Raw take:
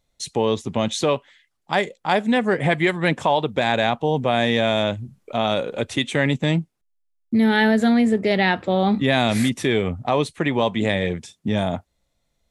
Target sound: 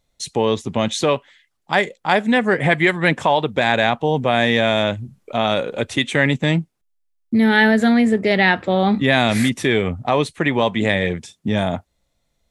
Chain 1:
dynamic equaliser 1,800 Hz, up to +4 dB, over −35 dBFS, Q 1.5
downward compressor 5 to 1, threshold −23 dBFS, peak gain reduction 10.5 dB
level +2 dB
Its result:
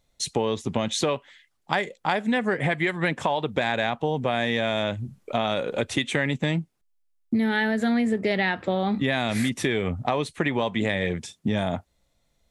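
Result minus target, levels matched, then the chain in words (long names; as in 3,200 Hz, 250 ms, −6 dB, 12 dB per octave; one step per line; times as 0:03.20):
downward compressor: peak gain reduction +10.5 dB
dynamic equaliser 1,800 Hz, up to +4 dB, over −35 dBFS, Q 1.5
level +2 dB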